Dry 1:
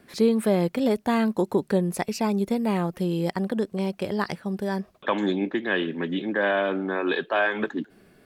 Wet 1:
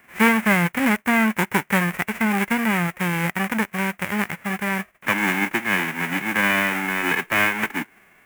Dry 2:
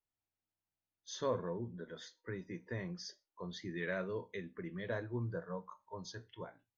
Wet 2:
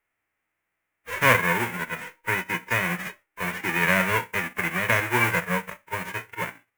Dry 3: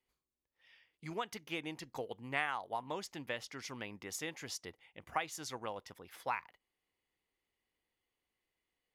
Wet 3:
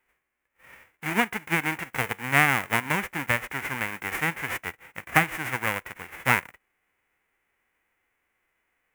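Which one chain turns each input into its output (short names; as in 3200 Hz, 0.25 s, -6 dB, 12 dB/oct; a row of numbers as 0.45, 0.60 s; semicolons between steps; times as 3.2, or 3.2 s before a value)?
spectral whitening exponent 0.1; resonant high shelf 3000 Hz -12.5 dB, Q 3; normalise peaks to -2 dBFS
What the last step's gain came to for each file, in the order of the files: +4.0, +18.0, +16.5 dB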